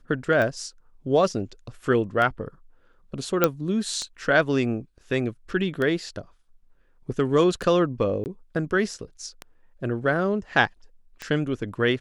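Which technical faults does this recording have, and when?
tick 33 1/3 rpm -16 dBFS
3.44 pop -4 dBFS
8.24–8.26 gap 19 ms

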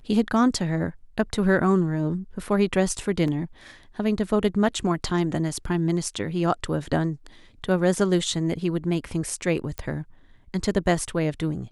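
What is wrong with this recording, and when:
3.28 gap 2 ms
9.78 pop -15 dBFS

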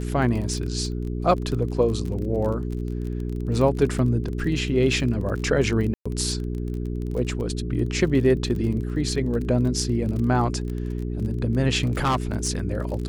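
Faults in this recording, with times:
crackle 30/s -30 dBFS
hum 60 Hz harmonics 7 -28 dBFS
5.94–6.05 gap 0.115 s
11.83–12.49 clipped -17.5 dBFS

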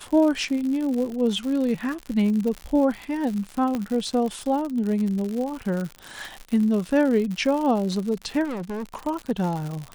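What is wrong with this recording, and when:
crackle 110/s -28 dBFS
3.75 pop -15 dBFS
8.44–8.96 clipped -27.5 dBFS

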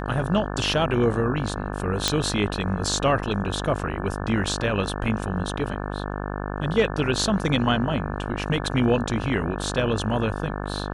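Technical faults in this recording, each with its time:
buzz 50 Hz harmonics 35 -30 dBFS
2.08 pop -4 dBFS

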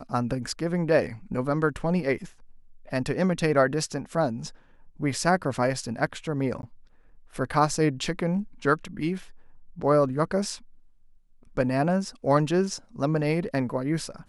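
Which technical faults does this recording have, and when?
6.62–6.63 gap 11 ms

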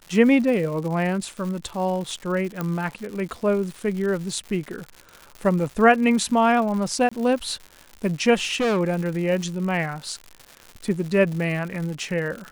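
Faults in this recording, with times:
crackle 180/s -31 dBFS
2.61 pop -13 dBFS
7.09–7.12 gap 25 ms
8.4–8.81 clipped -19 dBFS

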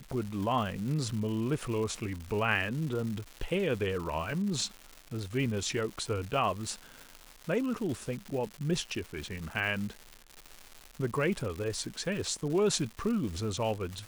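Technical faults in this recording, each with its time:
crackle 310/s -37 dBFS

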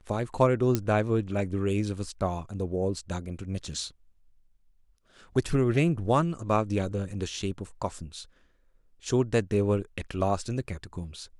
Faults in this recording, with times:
0.75 pop -11 dBFS

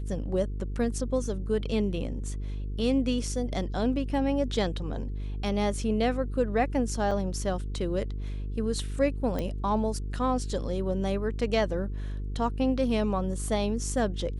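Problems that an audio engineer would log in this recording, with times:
buzz 50 Hz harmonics 9 -33 dBFS
7.11 gap 4.8 ms
9.39 pop -19 dBFS

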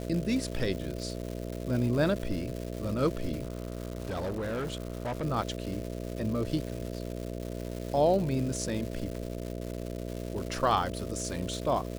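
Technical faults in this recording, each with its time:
buzz 60 Hz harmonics 11 -37 dBFS
crackle 390/s -36 dBFS
3.43–5.24 clipped -29.5 dBFS

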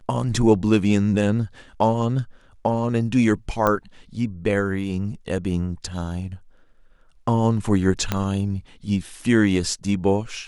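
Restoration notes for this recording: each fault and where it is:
3.67 pop -8 dBFS
8.12 pop -7 dBFS

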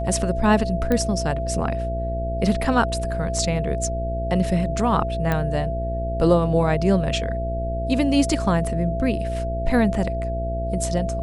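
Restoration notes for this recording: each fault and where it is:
buzz 60 Hz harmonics 10 -27 dBFS
tone 670 Hz -27 dBFS
0.92 pop -10 dBFS
5.32 pop -10 dBFS

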